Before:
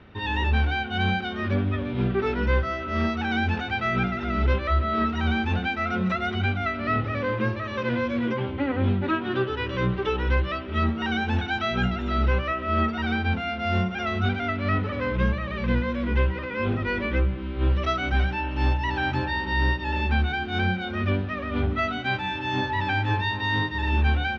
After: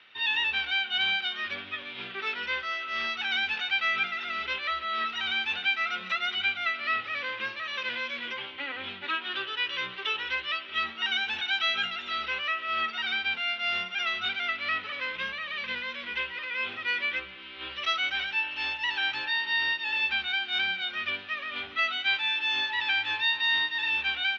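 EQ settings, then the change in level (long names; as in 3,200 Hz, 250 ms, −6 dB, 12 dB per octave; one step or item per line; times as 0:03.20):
resonant band-pass 3,100 Hz, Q 1.5
spectral tilt +1.5 dB per octave
+5.0 dB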